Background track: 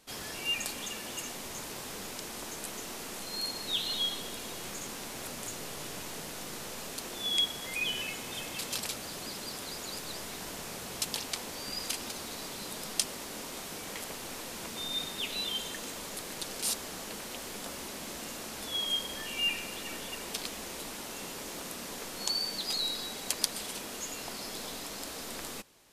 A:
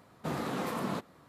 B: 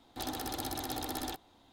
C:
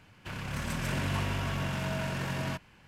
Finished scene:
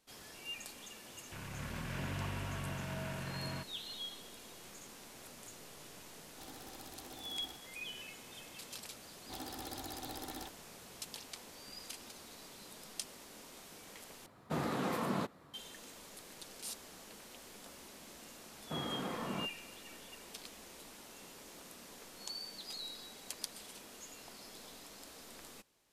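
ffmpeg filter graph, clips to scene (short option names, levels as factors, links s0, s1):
-filter_complex "[2:a]asplit=2[s0][s1];[1:a]asplit=2[s2][s3];[0:a]volume=0.237[s4];[3:a]lowpass=4300[s5];[s3]lowpass=4000[s6];[s4]asplit=2[s7][s8];[s7]atrim=end=14.264[s9];[s2]atrim=end=1.28,asetpts=PTS-STARTPTS,volume=0.841[s10];[s8]atrim=start=15.536[s11];[s5]atrim=end=2.87,asetpts=PTS-STARTPTS,volume=0.376,afade=t=in:d=0.004:c=hsin,afade=t=out:st=2.866:d=0.004:c=hsin,adelay=1060[s12];[s0]atrim=end=1.72,asetpts=PTS-STARTPTS,volume=0.168,afade=t=in:d=0.004:c=hsin,afade=t=out:st=1.716:d=0.004:c=hsin,adelay=6210[s13];[s1]atrim=end=1.72,asetpts=PTS-STARTPTS,volume=0.398,afade=t=in:d=0.004:c=hsin,afade=t=out:st=1.716:d=0.004:c=hsin,adelay=9130[s14];[s6]atrim=end=1.28,asetpts=PTS-STARTPTS,volume=0.501,afade=t=in:d=0.004:c=hsin,afade=t=out:st=1.276:d=0.004:c=hsin,adelay=18460[s15];[s9][s10]acrossfade=d=0.004:c1=hsin:c2=hsin[s16];[s16][s11]acrossfade=d=0.004:c1=hsin:c2=hsin[s17];[s17][s12][s13][s14][s15]amix=inputs=5:normalize=0"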